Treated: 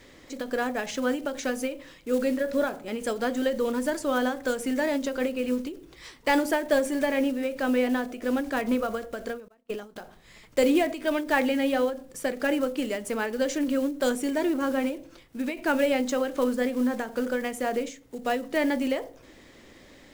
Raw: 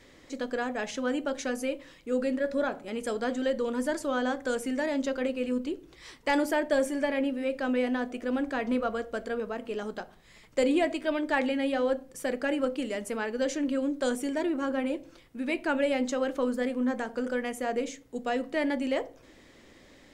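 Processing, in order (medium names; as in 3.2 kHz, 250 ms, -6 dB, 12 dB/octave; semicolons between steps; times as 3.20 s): block-companded coder 5-bit; 9.48–9.96 s: gate -35 dBFS, range -32 dB; endings held to a fixed fall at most 130 dB/s; trim +3.5 dB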